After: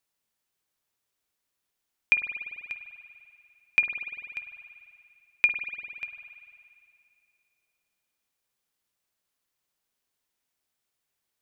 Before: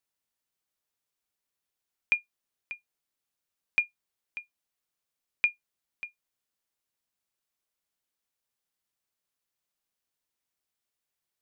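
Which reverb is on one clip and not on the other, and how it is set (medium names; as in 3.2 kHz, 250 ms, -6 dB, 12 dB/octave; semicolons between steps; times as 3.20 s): spring tank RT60 2.5 s, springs 49 ms, chirp 30 ms, DRR 6.5 dB; trim +4 dB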